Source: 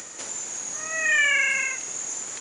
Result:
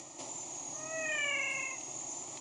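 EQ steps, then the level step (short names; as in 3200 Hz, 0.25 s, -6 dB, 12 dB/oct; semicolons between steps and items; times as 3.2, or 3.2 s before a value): LPF 9400 Hz 12 dB/oct; high shelf 2200 Hz -10 dB; fixed phaser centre 310 Hz, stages 8; 0.0 dB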